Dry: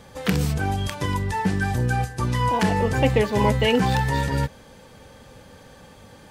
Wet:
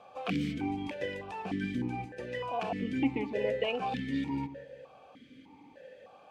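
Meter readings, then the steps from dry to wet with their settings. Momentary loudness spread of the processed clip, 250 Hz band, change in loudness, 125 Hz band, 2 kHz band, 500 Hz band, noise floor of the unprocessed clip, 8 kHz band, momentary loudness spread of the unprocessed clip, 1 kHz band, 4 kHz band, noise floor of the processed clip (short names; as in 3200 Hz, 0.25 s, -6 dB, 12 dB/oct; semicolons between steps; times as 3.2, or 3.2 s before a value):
21 LU, -8.0 dB, -11.5 dB, -19.0 dB, -12.5 dB, -10.5 dB, -48 dBFS, under -20 dB, 6 LU, -13.0 dB, -13.0 dB, -57 dBFS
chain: dynamic EQ 910 Hz, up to -5 dB, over -34 dBFS, Q 1.3; vocal rider 2 s; on a send: darkening echo 0.181 s, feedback 45%, low-pass 1200 Hz, level -12 dB; on the sum: vowel sequencer 3.3 Hz; gain +3.5 dB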